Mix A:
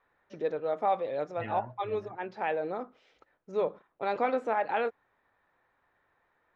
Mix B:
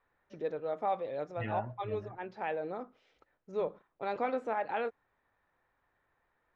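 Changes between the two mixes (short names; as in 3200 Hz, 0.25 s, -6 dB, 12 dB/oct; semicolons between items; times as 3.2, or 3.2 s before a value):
first voice -5.0 dB; master: add low shelf 160 Hz +6 dB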